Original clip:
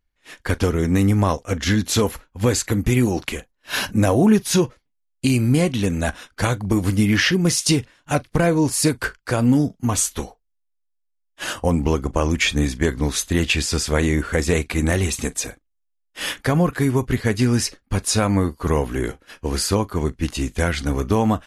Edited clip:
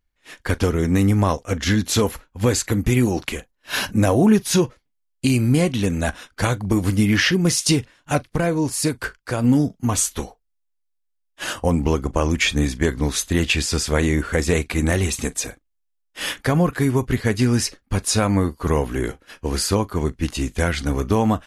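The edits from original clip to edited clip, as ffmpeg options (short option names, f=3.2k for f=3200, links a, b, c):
-filter_complex "[0:a]asplit=3[a][b][c];[a]atrim=end=8.262[d];[b]atrim=start=8.258:end=9.442,asetpts=PTS-STARTPTS,volume=-3dB[e];[c]atrim=start=9.438[f];[d][e]acrossfade=d=0.004:c1=hsin:c2=hsin[g];[g][f]acrossfade=d=0.004:c1=hsin:c2=hsin"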